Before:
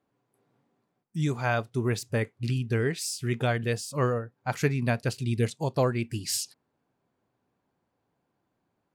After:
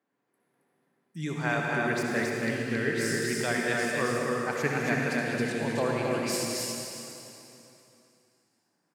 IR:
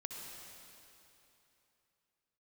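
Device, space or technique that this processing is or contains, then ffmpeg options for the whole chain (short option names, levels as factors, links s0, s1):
stadium PA: -filter_complex "[0:a]highpass=f=160:w=0.5412,highpass=f=160:w=1.3066,equalizer=f=1800:t=o:w=0.62:g=7.5,aecho=1:1:201.2|271.1:0.282|0.708[s0];[1:a]atrim=start_sample=2205[s1];[s0][s1]afir=irnorm=-1:irlink=0"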